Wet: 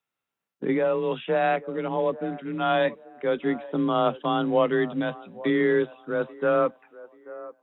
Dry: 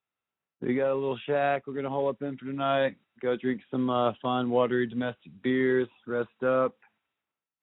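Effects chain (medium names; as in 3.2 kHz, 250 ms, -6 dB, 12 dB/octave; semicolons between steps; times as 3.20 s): frequency shift +26 Hz; feedback echo behind a band-pass 835 ms, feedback 31%, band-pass 720 Hz, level -17 dB; trim +3 dB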